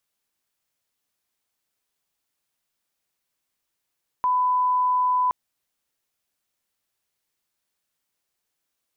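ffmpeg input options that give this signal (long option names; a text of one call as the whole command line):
ffmpeg -f lavfi -i "sine=frequency=1000:duration=1.07:sample_rate=44100,volume=0.06dB" out.wav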